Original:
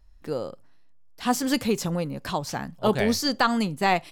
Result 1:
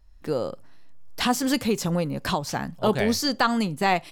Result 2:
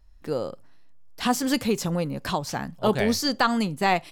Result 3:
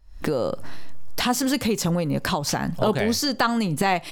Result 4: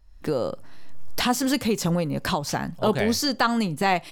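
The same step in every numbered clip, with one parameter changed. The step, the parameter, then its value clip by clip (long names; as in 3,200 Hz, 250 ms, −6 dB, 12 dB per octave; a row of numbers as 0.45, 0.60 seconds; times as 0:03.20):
camcorder AGC, rising by: 14, 5.1, 85, 35 dB per second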